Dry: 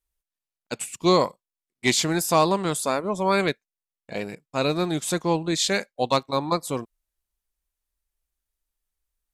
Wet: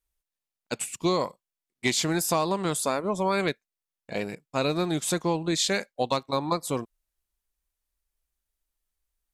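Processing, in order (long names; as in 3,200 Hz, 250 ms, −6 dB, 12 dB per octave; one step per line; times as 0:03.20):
downward compressor, threshold −21 dBFS, peak gain reduction 7.5 dB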